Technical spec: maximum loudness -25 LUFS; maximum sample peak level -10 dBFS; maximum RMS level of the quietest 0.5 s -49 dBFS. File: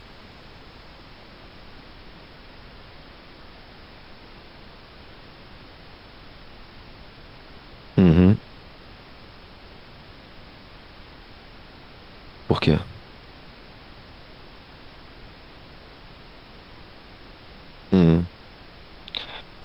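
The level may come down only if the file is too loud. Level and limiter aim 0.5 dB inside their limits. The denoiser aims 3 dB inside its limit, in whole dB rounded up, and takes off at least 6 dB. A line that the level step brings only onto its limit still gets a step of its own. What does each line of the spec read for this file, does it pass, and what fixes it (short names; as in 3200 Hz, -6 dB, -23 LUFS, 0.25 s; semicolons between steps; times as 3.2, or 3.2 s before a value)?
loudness -21.0 LUFS: fail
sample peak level -6.0 dBFS: fail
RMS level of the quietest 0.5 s -45 dBFS: fail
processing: gain -4.5 dB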